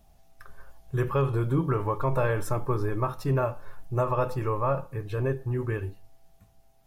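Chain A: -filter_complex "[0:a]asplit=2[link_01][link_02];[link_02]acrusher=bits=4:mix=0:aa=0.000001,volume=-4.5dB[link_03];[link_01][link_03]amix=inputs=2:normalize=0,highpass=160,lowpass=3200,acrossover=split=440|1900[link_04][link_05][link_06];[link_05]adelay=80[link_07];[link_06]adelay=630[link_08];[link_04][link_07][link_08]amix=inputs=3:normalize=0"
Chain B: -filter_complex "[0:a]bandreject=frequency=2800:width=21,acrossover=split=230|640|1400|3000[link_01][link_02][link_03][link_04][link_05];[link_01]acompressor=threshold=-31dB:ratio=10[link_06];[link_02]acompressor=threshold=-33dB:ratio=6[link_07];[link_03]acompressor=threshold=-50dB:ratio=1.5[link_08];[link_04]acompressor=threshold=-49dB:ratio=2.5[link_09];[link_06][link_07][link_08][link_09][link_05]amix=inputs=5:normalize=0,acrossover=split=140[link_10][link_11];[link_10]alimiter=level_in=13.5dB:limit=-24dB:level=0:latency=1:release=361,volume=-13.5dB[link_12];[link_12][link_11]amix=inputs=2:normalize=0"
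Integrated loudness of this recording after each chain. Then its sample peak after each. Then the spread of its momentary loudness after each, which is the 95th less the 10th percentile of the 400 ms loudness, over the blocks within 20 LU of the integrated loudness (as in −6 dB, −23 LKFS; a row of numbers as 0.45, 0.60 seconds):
−27.5, −34.5 LKFS; −11.0, −18.0 dBFS; 11, 6 LU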